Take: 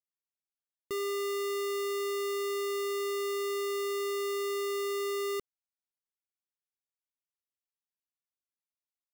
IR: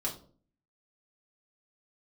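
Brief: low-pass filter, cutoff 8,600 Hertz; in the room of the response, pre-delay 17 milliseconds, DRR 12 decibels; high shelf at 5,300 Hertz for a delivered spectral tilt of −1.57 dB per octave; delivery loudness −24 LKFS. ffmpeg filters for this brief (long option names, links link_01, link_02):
-filter_complex "[0:a]lowpass=8600,highshelf=frequency=5300:gain=9,asplit=2[link_01][link_02];[1:a]atrim=start_sample=2205,adelay=17[link_03];[link_02][link_03]afir=irnorm=-1:irlink=0,volume=-15.5dB[link_04];[link_01][link_04]amix=inputs=2:normalize=0,volume=9dB"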